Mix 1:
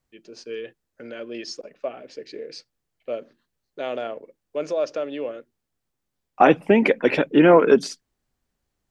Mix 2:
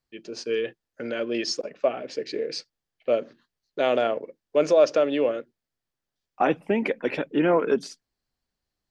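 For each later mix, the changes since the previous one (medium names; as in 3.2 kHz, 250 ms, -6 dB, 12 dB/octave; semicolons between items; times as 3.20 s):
first voice +6.5 dB; second voice -7.5 dB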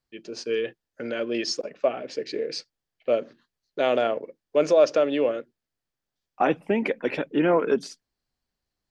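no change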